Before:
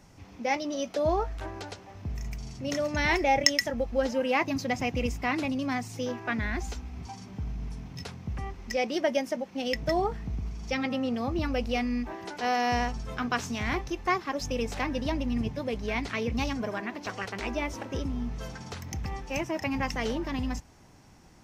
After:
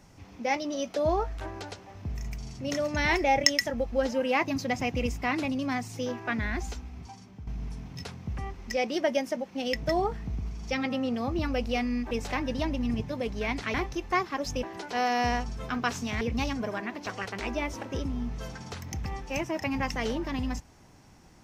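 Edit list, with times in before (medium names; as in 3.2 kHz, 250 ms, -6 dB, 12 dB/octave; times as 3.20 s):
6.64–7.47 s: fade out, to -10 dB
12.11–13.69 s: swap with 14.58–16.21 s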